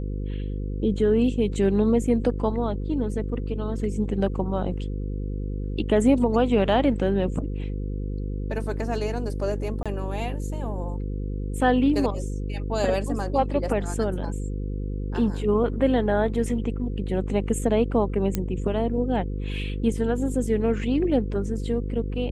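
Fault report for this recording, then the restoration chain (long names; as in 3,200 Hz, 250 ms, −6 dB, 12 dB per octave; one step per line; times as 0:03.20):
mains buzz 50 Hz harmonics 10 −29 dBFS
0:09.83–0:09.86: drop-out 26 ms
0:18.35: click −11 dBFS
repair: click removal
hum removal 50 Hz, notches 10
repair the gap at 0:09.83, 26 ms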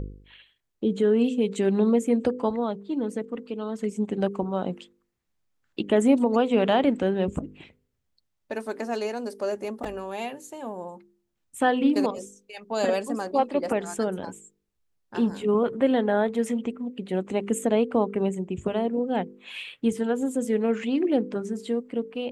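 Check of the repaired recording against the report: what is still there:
none of them is left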